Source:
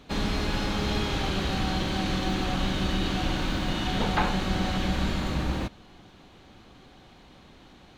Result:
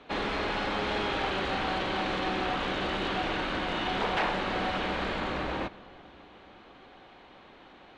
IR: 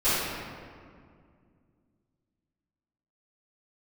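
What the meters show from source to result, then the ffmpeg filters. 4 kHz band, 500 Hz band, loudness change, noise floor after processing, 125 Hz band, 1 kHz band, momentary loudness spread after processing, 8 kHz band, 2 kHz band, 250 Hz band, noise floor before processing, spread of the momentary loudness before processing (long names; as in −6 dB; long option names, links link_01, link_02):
−2.5 dB, +1.5 dB, −2.0 dB, −53 dBFS, −11.0 dB, +1.5 dB, 3 LU, −11.0 dB, +1.5 dB, −6.0 dB, −53 dBFS, 3 LU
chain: -filter_complex "[0:a]aeval=exprs='0.0708*(abs(mod(val(0)/0.0708+3,4)-2)-1)':channel_layout=same,acrossover=split=320 3400:gain=0.2 1 0.112[link_01][link_02][link_03];[link_01][link_02][link_03]amix=inputs=3:normalize=0,asplit=2[link_04][link_05];[1:a]atrim=start_sample=2205,asetrate=33516,aresample=44100,adelay=70[link_06];[link_05][link_06]afir=irnorm=-1:irlink=0,volume=-36.5dB[link_07];[link_04][link_07]amix=inputs=2:normalize=0,aresample=22050,aresample=44100,volume=3.5dB"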